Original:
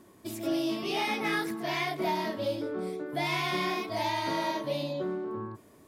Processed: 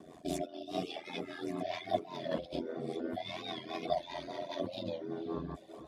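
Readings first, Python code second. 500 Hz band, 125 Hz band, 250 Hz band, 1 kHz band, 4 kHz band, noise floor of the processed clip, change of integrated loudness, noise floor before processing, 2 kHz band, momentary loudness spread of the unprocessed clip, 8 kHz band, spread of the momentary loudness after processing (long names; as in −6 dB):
−5.0 dB, −7.0 dB, −7.0 dB, −9.0 dB, −8.5 dB, −54 dBFS, −7.5 dB, −57 dBFS, −14.5 dB, 6 LU, can't be measured, 5 LU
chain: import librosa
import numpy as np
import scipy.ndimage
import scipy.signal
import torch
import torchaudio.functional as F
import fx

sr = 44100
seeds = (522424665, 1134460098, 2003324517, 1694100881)

y = fx.over_compress(x, sr, threshold_db=-37.0, ratio=-1.0)
y = fx.low_shelf(y, sr, hz=340.0, db=4.5)
y = fx.small_body(y, sr, hz=(670.0, 3500.0), ring_ms=45, db=15)
y = y * np.sin(2.0 * np.pi * 43.0 * np.arange(len(y)) / sr)
y = scipy.signal.sosfilt(scipy.signal.butter(2, 8000.0, 'lowpass', fs=sr, output='sos'), y)
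y = fx.rotary(y, sr, hz=5.0)
y = fx.highpass(y, sr, hz=130.0, slope=6)
y = fx.echo_diffused(y, sr, ms=477, feedback_pct=46, wet_db=-13.5)
y = fx.dynamic_eq(y, sr, hz=970.0, q=0.78, threshold_db=-44.0, ratio=4.0, max_db=-3)
y = fx.dereverb_blind(y, sr, rt60_s=0.69)
y = fx.record_warp(y, sr, rpm=45.0, depth_cents=100.0)
y = y * 10.0 ** (1.0 / 20.0)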